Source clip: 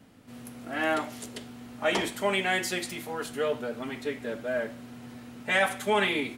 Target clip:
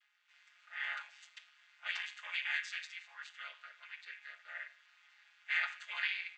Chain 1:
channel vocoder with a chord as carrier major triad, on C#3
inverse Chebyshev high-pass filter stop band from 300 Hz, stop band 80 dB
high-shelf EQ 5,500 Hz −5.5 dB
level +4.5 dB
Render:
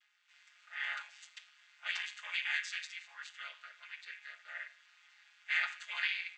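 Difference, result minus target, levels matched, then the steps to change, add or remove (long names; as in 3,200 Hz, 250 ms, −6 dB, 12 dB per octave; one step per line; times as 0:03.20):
8,000 Hz band +4.0 dB
change: high-shelf EQ 5,500 Hz −14.5 dB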